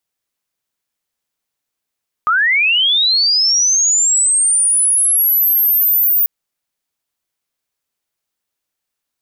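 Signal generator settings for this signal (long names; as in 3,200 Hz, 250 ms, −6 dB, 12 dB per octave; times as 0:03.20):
glide linear 1,200 Hz → 15,000 Hz −10.5 dBFS → −10 dBFS 3.99 s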